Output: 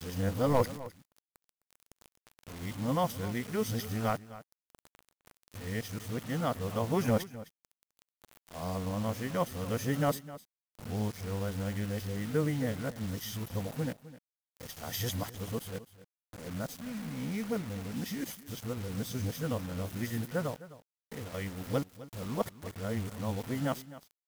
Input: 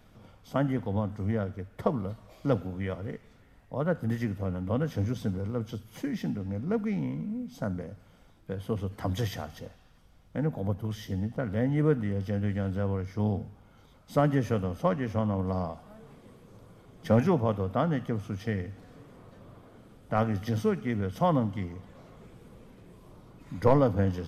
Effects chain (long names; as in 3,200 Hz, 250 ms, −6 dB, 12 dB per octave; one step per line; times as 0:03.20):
played backwards from end to start
first-order pre-emphasis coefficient 0.8
bit reduction 9 bits
single-tap delay 258 ms −16.5 dB
level +8.5 dB